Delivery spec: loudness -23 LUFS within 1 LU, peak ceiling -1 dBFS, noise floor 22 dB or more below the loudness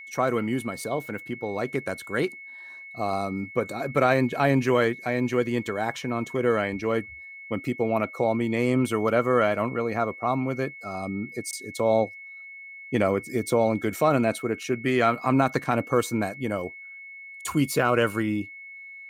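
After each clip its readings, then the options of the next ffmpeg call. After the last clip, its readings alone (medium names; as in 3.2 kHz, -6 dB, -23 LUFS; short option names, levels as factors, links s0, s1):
steady tone 2.2 kHz; tone level -40 dBFS; loudness -26.0 LUFS; peak level -8.5 dBFS; loudness target -23.0 LUFS
-> -af "bandreject=f=2200:w=30"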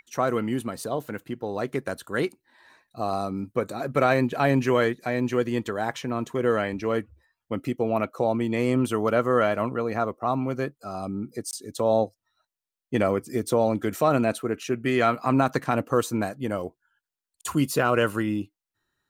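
steady tone not found; loudness -26.0 LUFS; peak level -8.5 dBFS; loudness target -23.0 LUFS
-> -af "volume=1.41"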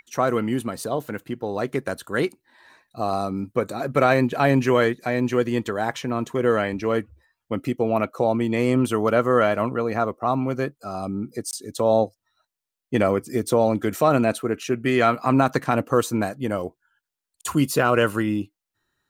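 loudness -23.0 LUFS; peak level -5.5 dBFS; noise floor -86 dBFS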